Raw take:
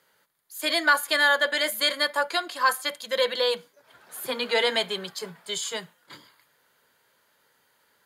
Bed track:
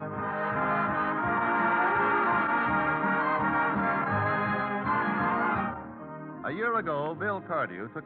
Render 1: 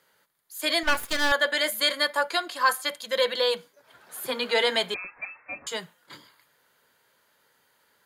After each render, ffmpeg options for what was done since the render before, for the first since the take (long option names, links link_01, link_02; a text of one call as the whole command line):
ffmpeg -i in.wav -filter_complex "[0:a]asettb=1/sr,asplit=3[link_01][link_02][link_03];[link_01]atrim=end=0.834[link_04];[link_02]atrim=start=0.83:end=1.32,asetpts=PTS-STARTPTS,afade=type=in:duration=0.004:curve=qsin,afade=type=out:start_time=0.486:duration=0.004:curve=qsin,aeval=exprs='max(val(0),0)':channel_layout=same[link_05];[link_03]atrim=start=1.316[link_06];[link_04][link_05]acrossfade=duration=0.004:curve1=hsin:curve2=qsin[link_07];[link_07][link_06]acrossfade=duration=0.004:curve1=qsin:curve2=hsin,asettb=1/sr,asplit=3[link_08][link_09][link_10];[link_08]atrim=end=4.944[link_11];[link_09]atrim=start=4.94:end=5.67,asetpts=PTS-STARTPTS,afade=type=in:duration=0.004:curve=qsin,afade=type=out:start_time=0.726:duration=0.004:curve=qsin,lowpass=frequency=2400:width_type=q:width=0.5098,lowpass=frequency=2400:width_type=q:width=0.6013,lowpass=frequency=2400:width_type=q:width=0.9,lowpass=frequency=2400:width_type=q:width=2.563,afreqshift=-2800[link_12];[link_10]atrim=start=5.666[link_13];[link_11][link_12]acrossfade=duration=0.004:curve1=hsin:curve2=qsin[link_14];[link_14][link_13]acrossfade=duration=0.004:curve1=qsin:curve2=hsin" out.wav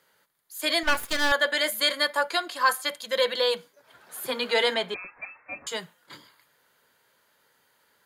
ffmpeg -i in.wav -filter_complex "[0:a]asettb=1/sr,asplit=3[link_01][link_02][link_03];[link_01]atrim=end=4.744[link_04];[link_02]atrim=start=4.74:end=5.52,asetpts=PTS-STARTPTS,afade=type=in:duration=0.004:curve=qsin,afade=type=out:start_time=0.776:duration=0.004:curve=qsin,highshelf=frequency=4200:gain=-11.5[link_05];[link_03]atrim=start=5.516[link_06];[link_04][link_05]acrossfade=duration=0.004:curve1=hsin:curve2=qsin[link_07];[link_07][link_06]acrossfade=duration=0.004:curve1=qsin:curve2=hsin" out.wav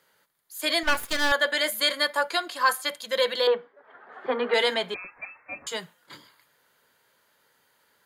ffmpeg -i in.wav -filter_complex "[0:a]asettb=1/sr,asplit=3[link_01][link_02][link_03];[link_01]atrim=end=3.474[link_04];[link_02]atrim=start=3.47:end=4.54,asetpts=PTS-STARTPTS,afade=type=in:duration=0.004:curve=qsin,afade=type=out:start_time=1.066:duration=0.004:curve=qsin,highpass=240,equalizer=frequency=240:width_type=q:width=4:gain=6,equalizer=frequency=430:width_type=q:width=4:gain=9,equalizer=frequency=760:width_type=q:width=4:gain=9,equalizer=frequency=1200:width_type=q:width=4:gain=7,equalizer=frequency=1800:width_type=q:width=4:gain=6,equalizer=frequency=2500:width_type=q:width=4:gain=-6,lowpass=frequency=2600:width=0.5412,lowpass=frequency=2600:width=1.3066[link_05];[link_03]atrim=start=4.536[link_06];[link_04][link_05]acrossfade=duration=0.004:curve1=hsin:curve2=qsin[link_07];[link_07][link_06]acrossfade=duration=0.004:curve1=qsin:curve2=hsin" out.wav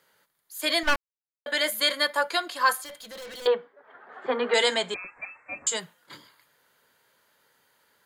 ffmpeg -i in.wav -filter_complex "[0:a]asettb=1/sr,asplit=3[link_01][link_02][link_03];[link_01]atrim=end=2.844[link_04];[link_02]atrim=start=2.84:end=3.46,asetpts=PTS-STARTPTS,afade=type=in:duration=0.004:curve=qsin,afade=type=out:start_time=0.616:duration=0.004:curve=qsin,aeval=exprs='(tanh(89.1*val(0)+0.1)-tanh(0.1))/89.1':channel_layout=same[link_05];[link_03]atrim=start=3.456[link_06];[link_04][link_05]acrossfade=duration=0.004:curve1=hsin:curve2=qsin[link_07];[link_07][link_06]acrossfade=duration=0.004:curve1=qsin:curve2=hsin,asettb=1/sr,asplit=3[link_08][link_09][link_10];[link_08]atrim=end=4.224[link_11];[link_09]atrim=start=4.22:end=5.8,asetpts=PTS-STARTPTS,afade=type=in:duration=0.004:curve=qsin,afade=type=out:start_time=1.576:duration=0.004:curve=qsin,lowpass=frequency=7700:width_type=q:width=7.7[link_12];[link_10]atrim=start=5.796[link_13];[link_11][link_12]acrossfade=duration=0.004:curve1=hsin:curve2=qsin[link_14];[link_14][link_13]acrossfade=duration=0.004:curve1=qsin:curve2=hsin,asplit=3[link_15][link_16][link_17];[link_15]atrim=end=0.96,asetpts=PTS-STARTPTS,afade=type=out:start_time=0.956:duration=0.004:curve=hsin[link_18];[link_16]atrim=start=0.96:end=1.46,asetpts=PTS-STARTPTS,volume=0[link_19];[link_17]atrim=start=1.46,asetpts=PTS-STARTPTS,afade=type=in:duration=0.004:curve=hsin[link_20];[link_18][link_19][link_20]concat=n=3:v=0:a=1" out.wav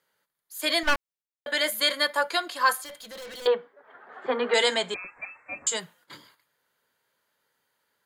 ffmpeg -i in.wav -af "agate=range=-9dB:threshold=-58dB:ratio=16:detection=peak" out.wav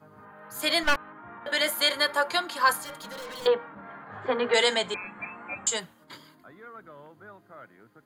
ffmpeg -i in.wav -i bed.wav -filter_complex "[1:a]volume=-17.5dB[link_01];[0:a][link_01]amix=inputs=2:normalize=0" out.wav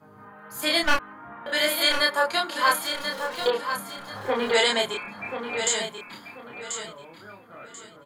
ffmpeg -i in.wav -filter_complex "[0:a]asplit=2[link_01][link_02];[link_02]adelay=30,volume=-2dB[link_03];[link_01][link_03]amix=inputs=2:normalize=0,asplit=2[link_04][link_05];[link_05]aecho=0:1:1037|2074|3111:0.398|0.104|0.0269[link_06];[link_04][link_06]amix=inputs=2:normalize=0" out.wav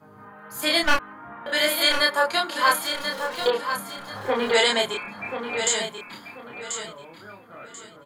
ffmpeg -i in.wav -af "volume=1.5dB" out.wav